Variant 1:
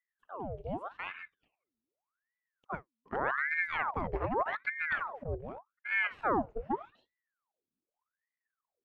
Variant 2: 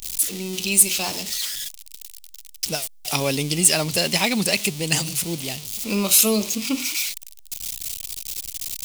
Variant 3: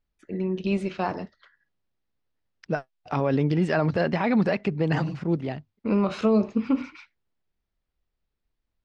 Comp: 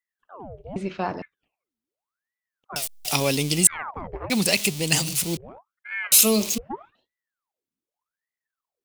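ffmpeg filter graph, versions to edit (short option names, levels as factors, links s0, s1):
-filter_complex "[1:a]asplit=3[s0][s1][s2];[0:a]asplit=5[s3][s4][s5][s6][s7];[s3]atrim=end=0.762[s8];[2:a]atrim=start=0.758:end=1.222[s9];[s4]atrim=start=1.218:end=2.762[s10];[s0]atrim=start=2.758:end=3.672[s11];[s5]atrim=start=3.668:end=4.302[s12];[s1]atrim=start=4.298:end=5.372[s13];[s6]atrim=start=5.368:end=6.122[s14];[s2]atrim=start=6.118:end=6.582[s15];[s7]atrim=start=6.578[s16];[s8][s9]acrossfade=d=0.004:c1=hsin:c2=hsin[s17];[s17][s10]acrossfade=d=0.004:c1=hsin:c2=hsin[s18];[s18][s11]acrossfade=d=0.004:c1=hsin:c2=hsin[s19];[s19][s12]acrossfade=d=0.004:c1=hsin:c2=hsin[s20];[s20][s13]acrossfade=d=0.004:c1=hsin:c2=hsin[s21];[s21][s14]acrossfade=d=0.004:c1=hsin:c2=hsin[s22];[s22][s15]acrossfade=d=0.004:c1=hsin:c2=hsin[s23];[s23][s16]acrossfade=d=0.004:c1=hsin:c2=hsin"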